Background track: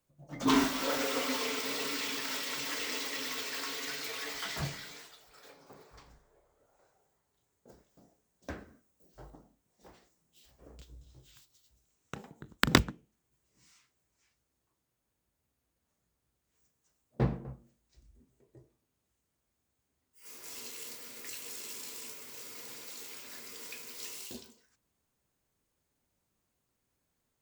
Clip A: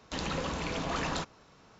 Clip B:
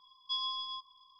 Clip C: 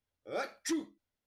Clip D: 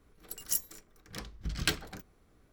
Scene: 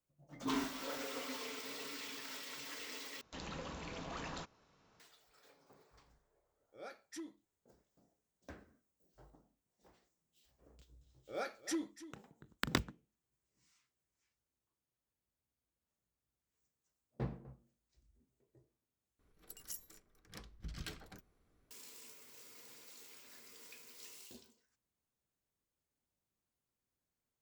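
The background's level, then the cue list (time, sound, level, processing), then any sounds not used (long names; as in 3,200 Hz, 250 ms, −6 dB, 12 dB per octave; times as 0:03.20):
background track −11 dB
0:03.21: overwrite with A −12 dB
0:06.47: mix in C −14 dB
0:11.02: mix in C −4.5 dB + single-tap delay 291 ms −15.5 dB
0:19.19: overwrite with D −10 dB + brickwall limiter −20.5 dBFS
not used: B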